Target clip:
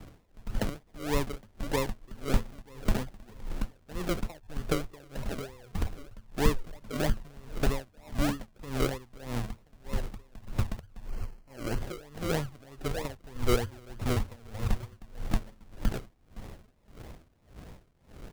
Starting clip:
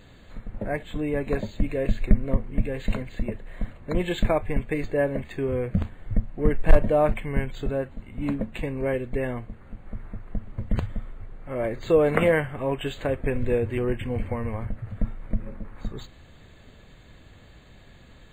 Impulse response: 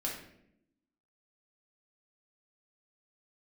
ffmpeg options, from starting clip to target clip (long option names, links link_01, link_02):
-filter_complex "[0:a]asettb=1/sr,asplit=3[link_01][link_02][link_03];[link_01]atrim=end=5.044[link_04];[link_02]atrim=start=5.04:end=6.18,asetpts=PTS-STARTPTS,afade=type=in:duration=0.004:curve=qsin,afade=type=out:start_time=1.136:duration=0.004:curve=qsin,equalizer=frequency=100:width_type=o:width=0.67:gain=-7,equalizer=frequency=250:width_type=o:width=0.67:gain=-7,equalizer=frequency=2500:width_type=o:width=0.67:gain=11[link_05];[link_03]atrim=start=6.176[link_06];[link_04][link_05]acrossfade=duration=0.004:curve1=hsin:curve2=qsin[link_07];[link_07][link_06]acrossfade=duration=0.004:curve1=qsin:curve2=hsin,aecho=1:1:1029:0.1,acrossover=split=99|350[link_08][link_09][link_10];[link_08]acompressor=threshold=-26dB:ratio=4[link_11];[link_09]acompressor=threshold=-37dB:ratio=4[link_12];[link_10]acompressor=threshold=-36dB:ratio=4[link_13];[link_11][link_12][link_13]amix=inputs=3:normalize=0,adynamicequalizer=threshold=0.00316:dfrequency=1300:dqfactor=0.76:tfrequency=1300:tqfactor=0.76:attack=5:release=100:ratio=0.375:range=2:mode=cutabove:tftype=bell,acrusher=samples=40:mix=1:aa=0.000001:lfo=1:lforange=24:lforate=3.2,asettb=1/sr,asplit=3[link_14][link_15][link_16];[link_14]atrim=end=11.094[link_17];[link_15]atrim=start=11.09:end=11.78,asetpts=PTS-STARTPTS,afade=type=in:duration=0.004:curve=qsin,afade=type=out:start_time=0.686:duration=0.004:curve=qsin,asuperstop=centerf=3600:order=8:qfactor=5.6[link_18];[link_16]atrim=start=11.776[link_19];[link_17][link_18]acrossfade=duration=0.004:curve1=hsin:curve2=qsin[link_20];[link_20][link_19]acrossfade=duration=0.004:curve1=qsin:curve2=hsin,aeval=exprs='val(0)*pow(10,-25*(0.5-0.5*cos(2*PI*1.7*n/s))/20)':channel_layout=same,volume=6dB"